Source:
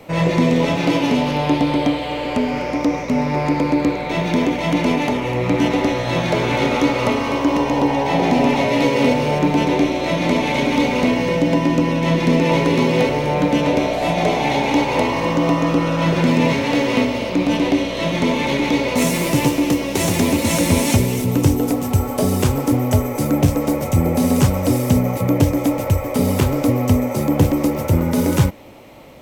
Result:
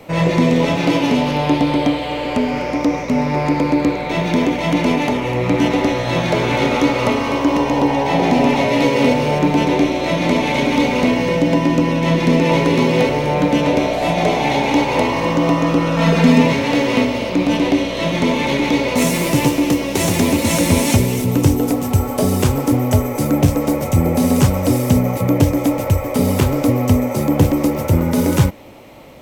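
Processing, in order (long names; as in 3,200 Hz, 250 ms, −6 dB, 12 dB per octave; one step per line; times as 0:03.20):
0:15.96–0:16.42: comb filter 4.4 ms, depth 86%
level +1.5 dB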